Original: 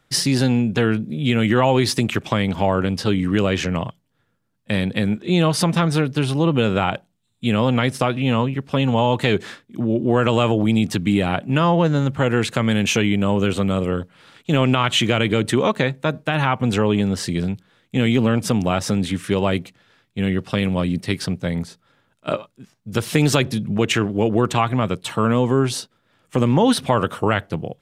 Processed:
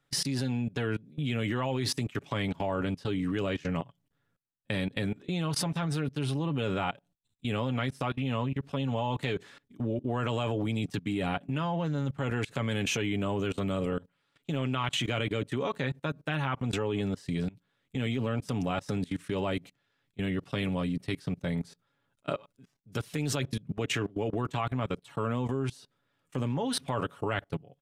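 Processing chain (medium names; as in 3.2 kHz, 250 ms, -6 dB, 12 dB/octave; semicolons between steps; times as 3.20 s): comb 7.1 ms, depth 47%; level held to a coarse grid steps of 23 dB; trim -7 dB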